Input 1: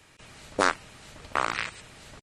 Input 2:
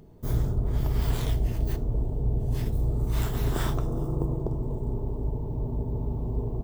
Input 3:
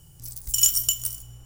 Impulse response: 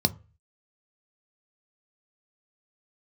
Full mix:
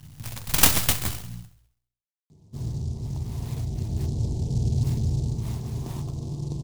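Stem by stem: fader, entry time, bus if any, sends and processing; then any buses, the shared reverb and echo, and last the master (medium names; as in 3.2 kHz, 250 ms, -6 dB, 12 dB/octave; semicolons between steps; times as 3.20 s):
mute
3.38 s -18 dB -> 4.18 s -11 dB -> 5.04 s -11 dB -> 5.71 s -18 dB, 2.30 s, send -3.5 dB, no echo send, none
+2.0 dB, 0.00 s, send -9.5 dB, echo send -14 dB, half-wave rectifier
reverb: on, RT60 0.35 s, pre-delay 3 ms
echo: feedback delay 66 ms, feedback 57%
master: peaking EQ 6.5 kHz +8.5 dB 0.83 oct; delay time shaken by noise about 5.3 kHz, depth 0.062 ms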